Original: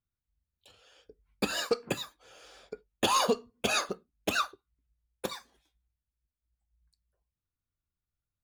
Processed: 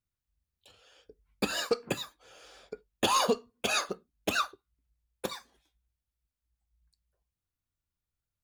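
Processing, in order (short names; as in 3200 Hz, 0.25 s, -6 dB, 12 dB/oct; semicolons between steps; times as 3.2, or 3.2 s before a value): 3.38–3.91 low shelf 380 Hz -5.5 dB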